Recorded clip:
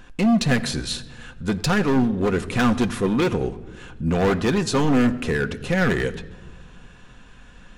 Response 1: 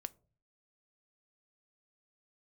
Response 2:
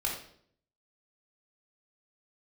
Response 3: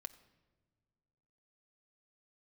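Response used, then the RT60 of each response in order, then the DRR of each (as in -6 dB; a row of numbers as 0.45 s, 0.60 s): 3; 0.40 s, 0.60 s, no single decay rate; 13.5 dB, -3.0 dB, 8.0 dB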